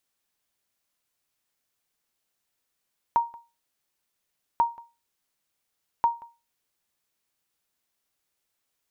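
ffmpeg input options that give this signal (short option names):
-f lavfi -i "aevalsrc='0.211*(sin(2*PI*935*mod(t,1.44))*exp(-6.91*mod(t,1.44)/0.28)+0.0708*sin(2*PI*935*max(mod(t,1.44)-0.18,0))*exp(-6.91*max(mod(t,1.44)-0.18,0)/0.28))':d=4.32:s=44100"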